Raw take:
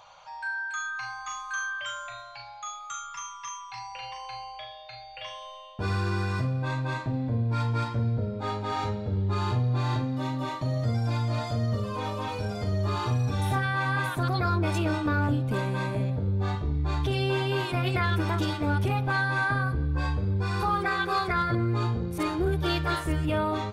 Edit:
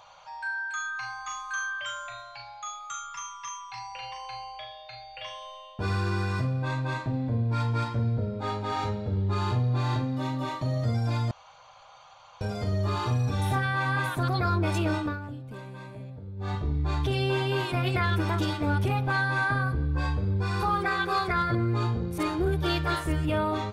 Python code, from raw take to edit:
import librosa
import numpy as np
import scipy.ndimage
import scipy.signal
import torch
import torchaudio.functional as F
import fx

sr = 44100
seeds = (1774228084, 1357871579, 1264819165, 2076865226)

y = fx.edit(x, sr, fx.room_tone_fill(start_s=11.31, length_s=1.1),
    fx.fade_down_up(start_s=14.99, length_s=1.57, db=-13.0, fade_s=0.2), tone=tone)